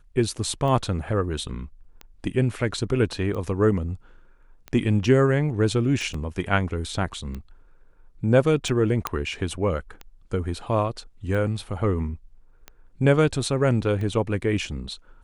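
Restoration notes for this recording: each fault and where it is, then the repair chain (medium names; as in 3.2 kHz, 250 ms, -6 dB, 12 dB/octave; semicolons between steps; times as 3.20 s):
tick 45 rpm -22 dBFS
6.14 s: dropout 3.9 ms
9.07 s: pop -8 dBFS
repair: de-click; interpolate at 6.14 s, 3.9 ms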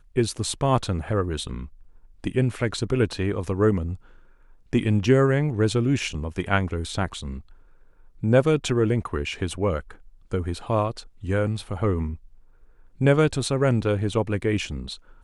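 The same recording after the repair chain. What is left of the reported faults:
nothing left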